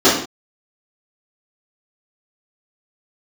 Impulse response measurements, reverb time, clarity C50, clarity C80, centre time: non-exponential decay, 5.0 dB, 8.5 dB, 38 ms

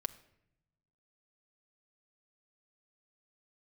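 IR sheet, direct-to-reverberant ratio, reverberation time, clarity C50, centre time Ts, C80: 9.5 dB, 0.80 s, 17.0 dB, 3 ms, 19.0 dB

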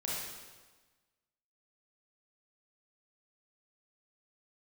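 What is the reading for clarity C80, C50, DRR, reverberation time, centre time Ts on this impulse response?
1.0 dB, −2.5 dB, −6.0 dB, 1.3 s, 95 ms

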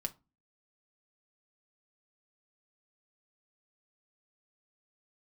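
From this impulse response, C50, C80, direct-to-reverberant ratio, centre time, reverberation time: 21.5 dB, 29.0 dB, 5.0 dB, 5 ms, 0.25 s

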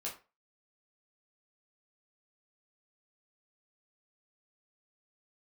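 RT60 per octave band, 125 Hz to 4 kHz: 0.25, 0.30, 0.30, 0.30, 0.30, 0.20 seconds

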